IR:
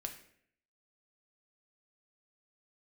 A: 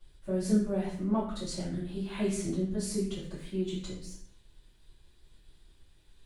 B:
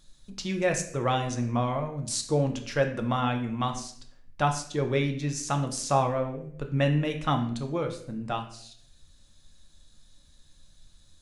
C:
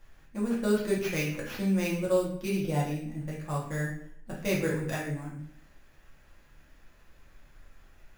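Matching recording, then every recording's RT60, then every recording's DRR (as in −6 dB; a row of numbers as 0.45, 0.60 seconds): B; 0.65, 0.65, 0.65 seconds; −12.5, 3.5, −6.0 decibels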